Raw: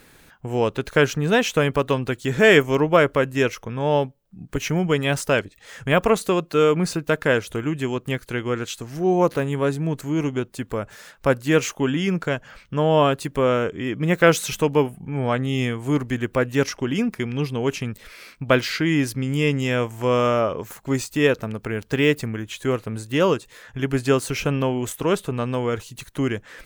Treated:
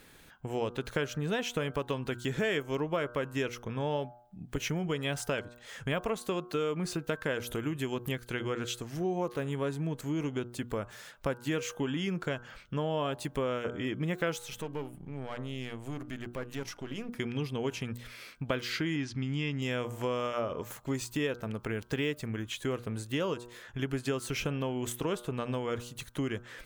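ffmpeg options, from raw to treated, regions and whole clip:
ffmpeg -i in.wav -filter_complex "[0:a]asettb=1/sr,asplit=3[link_01][link_02][link_03];[link_01]atrim=end=7.404[link_04];[link_02]atrim=start=7.4:end=8.12,asetpts=PTS-STARTPTS,afade=type=in:duration=0.004:curve=qsin,afade=type=out:start_time=0.716:duration=0.004:curve=qsin,equalizer=frequency=12000:width_type=o:width=0.28:gain=13.5,acompressor=mode=upward:threshold=-26dB:ratio=2.5:attack=3.2:release=140:knee=2.83:detection=peak[link_05];[link_03]atrim=start=8.116[link_06];[link_04][link_05]acrossfade=duration=0.004:curve1=hsin:curve2=qsin[link_07];[link_07][link_06]acrossfade=duration=0.004:curve1=qsin:curve2=hsin,asettb=1/sr,asplit=3[link_08][link_09][link_10];[link_08]atrim=end=14.384[link_11];[link_09]atrim=start=14.38:end=17.15,asetpts=PTS-STARTPTS,afade=type=in:duration=0.004:curve=qsin,afade=type=out:start_time=2.766:duration=0.004:curve=qsin,aeval=exprs='if(lt(val(0),0),0.447*val(0),val(0))':channel_layout=same,bandreject=frequency=60:width_type=h:width=6,bandreject=frequency=120:width_type=h:width=6,bandreject=frequency=180:width_type=h:width=6,bandreject=frequency=240:width_type=h:width=6,bandreject=frequency=300:width_type=h:width=6,bandreject=frequency=360:width_type=h:width=6,acompressor=threshold=-34dB:ratio=2:attack=3.2:release=140:knee=1:detection=peak[link_12];[link_10]atrim=start=17.146[link_13];[link_11][link_12]acrossfade=duration=0.004:curve1=hsin:curve2=qsin[link_14];[link_14][link_13]acrossfade=duration=0.004:curve1=qsin:curve2=hsin,asettb=1/sr,asplit=3[link_15][link_16][link_17];[link_15]atrim=end=18.964[link_18];[link_16]atrim=start=18.96:end=19.62,asetpts=PTS-STARTPTS,afade=type=in:duration=0.004:curve=qsin,afade=type=out:start_time=0.656:duration=0.004:curve=qsin,lowpass=frequency=6000:width=0.5412,lowpass=frequency=6000:width=1.3066,equalizer=frequency=500:width=3.2:gain=-12.5[link_19];[link_17]atrim=start=19.616[link_20];[link_18][link_19]acrossfade=duration=0.004:curve1=hsin:curve2=qsin[link_21];[link_21][link_20]acrossfade=duration=0.004:curve1=qsin:curve2=hsin,equalizer=frequency=3300:width_type=o:width=0.3:gain=3.5,bandreject=frequency=120.4:width_type=h:width=4,bandreject=frequency=240.8:width_type=h:width=4,bandreject=frequency=361.2:width_type=h:width=4,bandreject=frequency=481.6:width_type=h:width=4,bandreject=frequency=602:width_type=h:width=4,bandreject=frequency=722.4:width_type=h:width=4,bandreject=frequency=842.8:width_type=h:width=4,bandreject=frequency=963.2:width_type=h:width=4,bandreject=frequency=1083.6:width_type=h:width=4,bandreject=frequency=1204:width_type=h:width=4,bandreject=frequency=1324.4:width_type=h:width=4,bandreject=frequency=1444.8:width_type=h:width=4,bandreject=frequency=1565.2:width_type=h:width=4,acompressor=threshold=-24dB:ratio=4,volume=-5.5dB" out.wav

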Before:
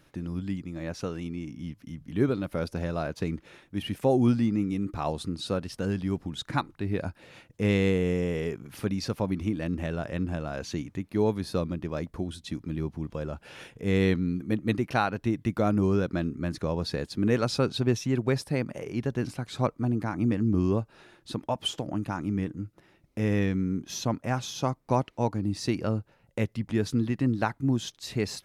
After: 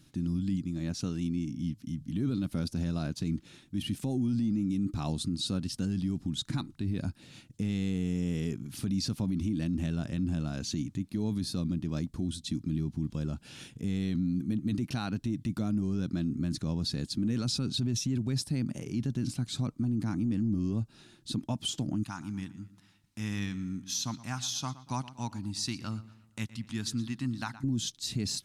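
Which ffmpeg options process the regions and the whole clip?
ffmpeg -i in.wav -filter_complex "[0:a]asettb=1/sr,asplit=3[link_01][link_02][link_03];[link_01]atrim=end=22.034[link_04];[link_02]atrim=start=22.03:end=27.64,asetpts=PTS-STARTPTS,afade=type=in:duration=0.004:curve=qsin,afade=type=out:start_time=5.606:duration=0.004:curve=qsin,lowshelf=frequency=680:width_type=q:width=1.5:gain=-11,asplit=2[link_05][link_06];[link_06]adelay=118,lowpass=frequency=4100:poles=1,volume=-16dB,asplit=2[link_07][link_08];[link_08]adelay=118,lowpass=frequency=4100:poles=1,volume=0.45,asplit=2[link_09][link_10];[link_10]adelay=118,lowpass=frequency=4100:poles=1,volume=0.45,asplit=2[link_11][link_12];[link_12]adelay=118,lowpass=frequency=4100:poles=1,volume=0.45[link_13];[link_05][link_07][link_09][link_11][link_13]amix=inputs=5:normalize=0,atrim=end_sample=247401[link_14];[link_03]atrim=start=27.636[link_15];[link_04][link_14]acrossfade=duration=0.004:curve1=hsin:curve2=qsin[link_16];[link_16][link_15]acrossfade=duration=0.004:curve1=qsin:curve2=hsin,equalizer=frequency=125:width_type=o:width=1:gain=5,equalizer=frequency=250:width_type=o:width=1:gain=8,equalizer=frequency=500:width_type=o:width=1:gain=-11,equalizer=frequency=1000:width_type=o:width=1:gain=-5,equalizer=frequency=2000:width_type=o:width=1:gain=-6,equalizer=frequency=4000:width_type=o:width=1:gain=5,equalizer=frequency=8000:width_type=o:width=1:gain=7,alimiter=limit=-21.5dB:level=0:latency=1:release=19,volume=-1.5dB" out.wav

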